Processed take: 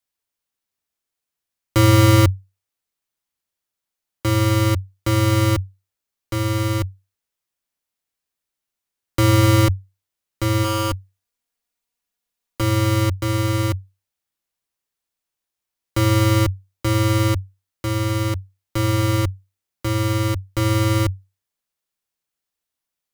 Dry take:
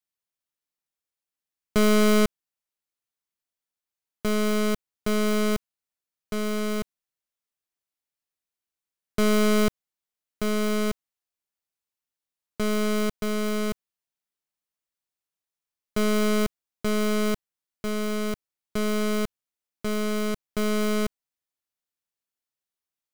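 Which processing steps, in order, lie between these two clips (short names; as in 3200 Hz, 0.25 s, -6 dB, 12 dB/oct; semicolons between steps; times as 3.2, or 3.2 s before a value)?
frequency shift -96 Hz; 10.64–12.61 comb 4.2 ms, depth 63%; gain +6 dB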